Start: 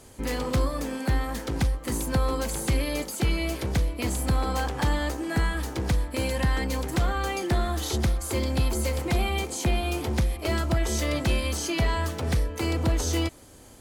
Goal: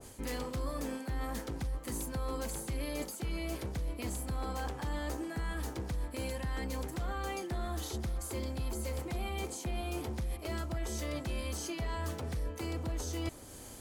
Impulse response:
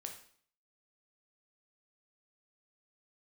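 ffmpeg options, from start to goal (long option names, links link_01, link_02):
-af "highshelf=frequency=5400:gain=5,areverse,acompressor=threshold=-34dB:ratio=6,areverse,adynamicequalizer=threshold=0.00224:dfrequency=1700:dqfactor=0.7:tfrequency=1700:tqfactor=0.7:attack=5:release=100:ratio=0.375:range=2:mode=cutabove:tftype=highshelf"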